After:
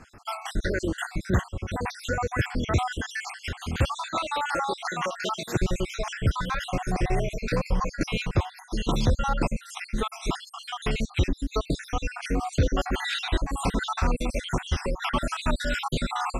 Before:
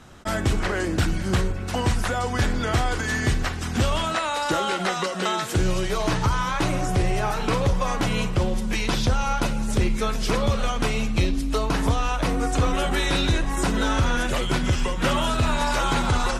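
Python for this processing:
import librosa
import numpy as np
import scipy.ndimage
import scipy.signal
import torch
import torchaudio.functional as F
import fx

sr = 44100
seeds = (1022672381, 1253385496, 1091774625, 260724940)

y = fx.spec_dropout(x, sr, seeds[0], share_pct=62)
y = fx.high_shelf(y, sr, hz=7900.0, db=-6.0)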